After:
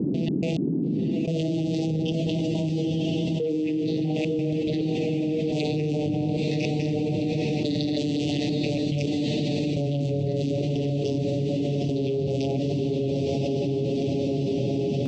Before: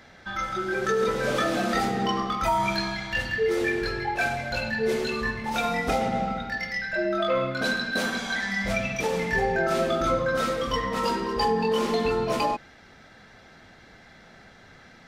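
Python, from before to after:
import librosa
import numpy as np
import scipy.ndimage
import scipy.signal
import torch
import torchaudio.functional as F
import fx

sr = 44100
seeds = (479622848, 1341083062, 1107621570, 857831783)

y = fx.vocoder_glide(x, sr, note=52, semitones=-4)
y = scipy.signal.sosfilt(scipy.signal.ellip(3, 1.0, 60, [600.0, 2800.0], 'bandstop', fs=sr, output='sos'), y)
y = fx.dynamic_eq(y, sr, hz=580.0, q=1.7, threshold_db=-41.0, ratio=4.0, max_db=-7)
y = fx.granulator(y, sr, seeds[0], grain_ms=104.0, per_s=20.0, spray_ms=17.0, spread_st=0)
y = fx.step_gate(y, sr, bpm=106, pattern='.x.x.....xxxxxx', floor_db=-60.0, edge_ms=4.5)
y = fx.dmg_noise_band(y, sr, seeds[1], low_hz=140.0, high_hz=350.0, level_db=-52.0)
y = fx.echo_diffused(y, sr, ms=929, feedback_pct=64, wet_db=-7.0)
y = fx.env_flatten(y, sr, amount_pct=100)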